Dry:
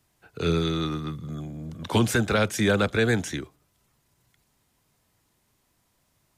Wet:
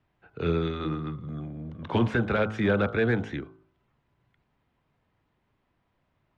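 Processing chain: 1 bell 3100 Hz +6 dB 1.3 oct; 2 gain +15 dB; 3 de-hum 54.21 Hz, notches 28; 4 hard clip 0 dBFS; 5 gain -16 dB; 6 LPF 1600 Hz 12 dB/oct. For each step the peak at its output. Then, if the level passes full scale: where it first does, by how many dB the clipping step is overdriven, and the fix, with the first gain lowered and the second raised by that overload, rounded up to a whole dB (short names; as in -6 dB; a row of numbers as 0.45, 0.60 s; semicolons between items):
-7.5, +7.5, +8.0, 0.0, -16.0, -15.5 dBFS; step 2, 8.0 dB; step 2 +7 dB, step 5 -8 dB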